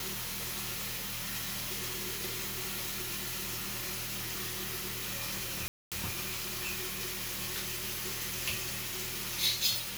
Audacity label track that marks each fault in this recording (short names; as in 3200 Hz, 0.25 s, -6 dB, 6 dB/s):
5.680000	5.920000	gap 0.237 s